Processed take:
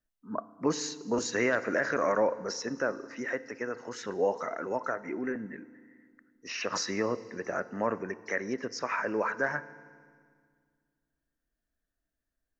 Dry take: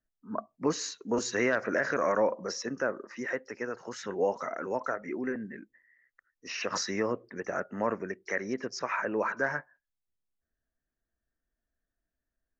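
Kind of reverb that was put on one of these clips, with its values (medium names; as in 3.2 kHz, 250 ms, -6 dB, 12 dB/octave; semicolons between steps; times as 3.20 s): FDN reverb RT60 1.9 s, low-frequency decay 1.4×, high-frequency decay 1×, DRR 15.5 dB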